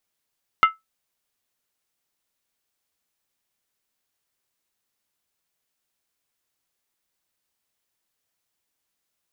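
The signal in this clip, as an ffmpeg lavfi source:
-f lavfi -i "aevalsrc='0.422*pow(10,-3*t/0.17)*sin(2*PI*1310*t)+0.178*pow(10,-3*t/0.135)*sin(2*PI*2088.1*t)+0.075*pow(10,-3*t/0.116)*sin(2*PI*2798.2*t)+0.0316*pow(10,-3*t/0.112)*sin(2*PI*3007.8*t)+0.0133*pow(10,-3*t/0.104)*sin(2*PI*3475.4*t)':d=0.63:s=44100"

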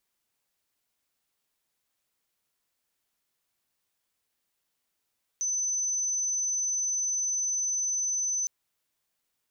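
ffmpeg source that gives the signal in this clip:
-f lavfi -i "sine=f=6080:d=3.06:r=44100,volume=-7.94dB"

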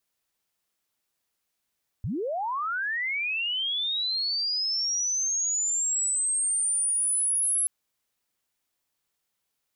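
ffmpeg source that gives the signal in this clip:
-f lavfi -i "aevalsrc='pow(10,(-27+5*t/5.63)/20)*sin(2*PI*(79*t+10921*t*t/(2*5.63)))':d=5.63:s=44100"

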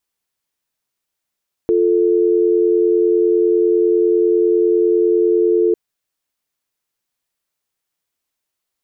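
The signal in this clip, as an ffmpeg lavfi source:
-f lavfi -i "aevalsrc='0.2*(sin(2*PI*350*t)+sin(2*PI*440*t))':d=4.05:s=44100"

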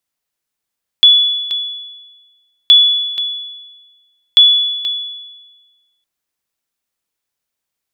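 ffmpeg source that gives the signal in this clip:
-f lavfi -i "aevalsrc='0.891*(sin(2*PI*3420*mod(t,1.67))*exp(-6.91*mod(t,1.67)/1.32)+0.299*sin(2*PI*3420*max(mod(t,1.67)-0.48,0))*exp(-6.91*max(mod(t,1.67)-0.48,0)/1.32))':d=5.01:s=44100"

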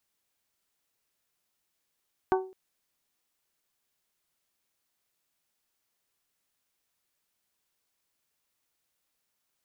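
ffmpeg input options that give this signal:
-f lavfi -i "aevalsrc='0.1*pow(10,-3*t/0.41)*sin(2*PI*377*t)+0.0708*pow(10,-3*t/0.252)*sin(2*PI*754*t)+0.0501*pow(10,-3*t/0.222)*sin(2*PI*904.8*t)+0.0355*pow(10,-3*t/0.19)*sin(2*PI*1131*t)+0.0251*pow(10,-3*t/0.155)*sin(2*PI*1508*t)':d=0.21:s=44100"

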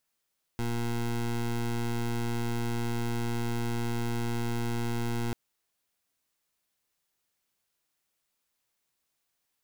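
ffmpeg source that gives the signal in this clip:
-f lavfi -i "aevalsrc='0.0316*(2*lt(mod(118*t,1),0.2)-1)':d=4.74:s=44100"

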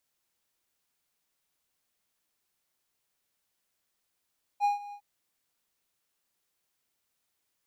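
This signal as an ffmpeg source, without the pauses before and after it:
-f lavfi -i "aevalsrc='0.112*(1-4*abs(mod(818*t+0.25,1)-0.5))':d=0.406:s=44100,afade=t=in:d=0.045,afade=t=out:st=0.045:d=0.14:silence=0.119,afade=t=out:st=0.33:d=0.076"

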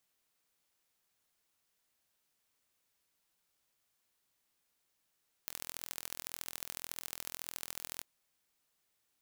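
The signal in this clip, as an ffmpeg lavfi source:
-f lavfi -i "aevalsrc='0.266*eq(mod(n,1055),0)*(0.5+0.5*eq(mod(n,3165),0))':d=2.54:s=44100"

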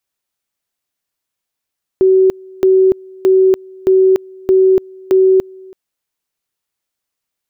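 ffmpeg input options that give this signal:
-f lavfi -i "aevalsrc='pow(10,(-6-26.5*gte(mod(t,0.62),0.29))/20)*sin(2*PI*378*t)':d=3.72:s=44100"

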